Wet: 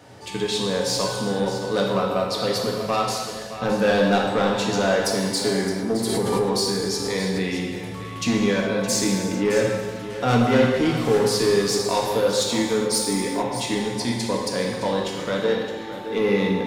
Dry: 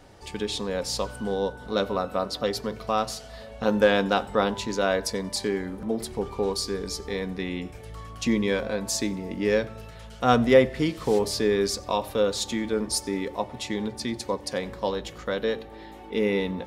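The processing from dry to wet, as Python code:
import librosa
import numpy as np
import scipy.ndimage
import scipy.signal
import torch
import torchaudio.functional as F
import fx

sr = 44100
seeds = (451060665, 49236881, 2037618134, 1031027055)

p1 = scipy.signal.sosfilt(scipy.signal.butter(4, 92.0, 'highpass', fs=sr, output='sos'), x)
p2 = 10.0 ** (-19.5 / 20.0) * np.tanh(p1 / 10.0 ** (-19.5 / 20.0))
p3 = p2 + fx.echo_single(p2, sr, ms=616, db=-12.5, dry=0)
p4 = fx.rev_gated(p3, sr, seeds[0], gate_ms=460, shape='falling', drr_db=-1.0)
p5 = fx.pre_swell(p4, sr, db_per_s=24.0, at=(5.9, 7.47))
y = p5 * librosa.db_to_amplitude(3.5)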